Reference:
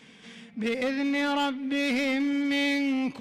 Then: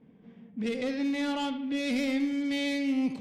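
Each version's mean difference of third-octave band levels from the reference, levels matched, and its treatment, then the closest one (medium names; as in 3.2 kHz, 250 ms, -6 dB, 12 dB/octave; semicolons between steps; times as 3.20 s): 3.0 dB: peaking EQ 1.4 kHz -9 dB 2.7 oct; bucket-brigade echo 76 ms, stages 2048, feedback 45%, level -11 dB; level-controlled noise filter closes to 770 Hz, open at -25.5 dBFS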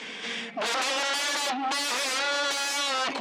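11.0 dB: sine folder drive 15 dB, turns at -20.5 dBFS; wow and flutter 19 cents; band-pass 410–7100 Hz; trim -2.5 dB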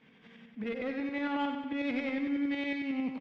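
5.5 dB: low-pass 2.4 kHz 12 dB/octave; tremolo saw up 11 Hz, depth 50%; feedback delay 95 ms, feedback 57%, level -7.5 dB; trim -5 dB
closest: first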